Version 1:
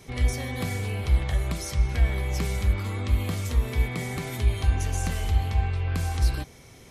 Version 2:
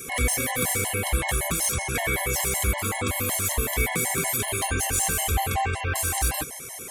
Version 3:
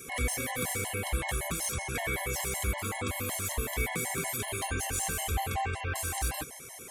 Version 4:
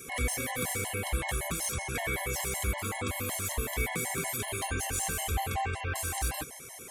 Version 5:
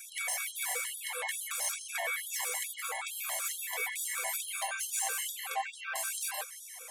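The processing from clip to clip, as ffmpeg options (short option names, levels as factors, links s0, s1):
-filter_complex "[0:a]aexciter=amount=8.6:drive=6.1:freq=6900,asplit=2[s0][s1];[s1]highpass=f=720:p=1,volume=12.6,asoftclip=type=tanh:threshold=0.473[s2];[s0][s2]amix=inputs=2:normalize=0,lowpass=f=3200:p=1,volume=0.501,afftfilt=real='re*gt(sin(2*PI*5.3*pts/sr)*(1-2*mod(floor(b*sr/1024/550),2)),0)':imag='im*gt(sin(2*PI*5.3*pts/sr)*(1-2*mod(floor(b*sr/1024/550),2)),0)':win_size=1024:overlap=0.75"
-af "highshelf=f=8400:g=-4,volume=0.473"
-af anull
-af "afftfilt=real='re*gte(b*sr/1024,430*pow(3100/430,0.5+0.5*sin(2*PI*2.3*pts/sr)))':imag='im*gte(b*sr/1024,430*pow(3100/430,0.5+0.5*sin(2*PI*2.3*pts/sr)))':win_size=1024:overlap=0.75"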